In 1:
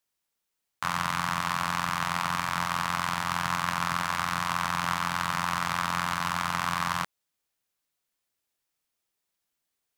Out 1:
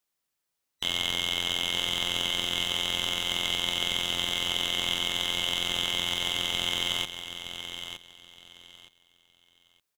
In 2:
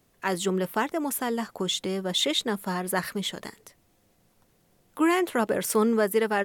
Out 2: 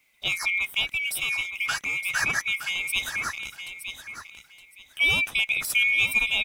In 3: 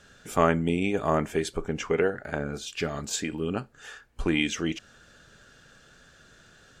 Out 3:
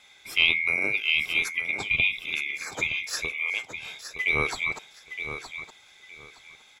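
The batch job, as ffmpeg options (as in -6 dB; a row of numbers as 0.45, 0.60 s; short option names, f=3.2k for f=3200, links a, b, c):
-af "afftfilt=real='real(if(lt(b,920),b+92*(1-2*mod(floor(b/92),2)),b),0)':imag='imag(if(lt(b,920),b+92*(1-2*mod(floor(b/92),2)),b),0)':win_size=2048:overlap=0.75,aecho=1:1:917|1834|2751:0.335|0.0737|0.0162,adynamicequalizer=threshold=0.00282:dfrequency=4300:dqfactor=6.4:tfrequency=4300:tqfactor=6.4:attack=5:release=100:ratio=0.375:range=2:mode=cutabove:tftype=bell"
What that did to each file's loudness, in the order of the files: +1.5, +2.5, +3.0 LU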